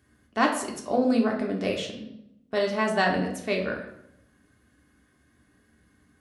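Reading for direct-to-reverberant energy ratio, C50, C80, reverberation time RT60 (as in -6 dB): 0.0 dB, 7.0 dB, 10.0 dB, 0.80 s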